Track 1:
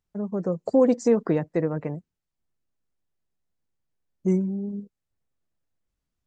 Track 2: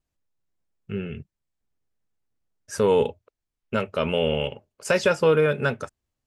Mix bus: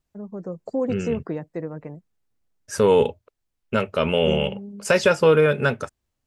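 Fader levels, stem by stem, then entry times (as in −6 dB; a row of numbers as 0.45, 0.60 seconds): −6.0, +3.0 decibels; 0.00, 0.00 seconds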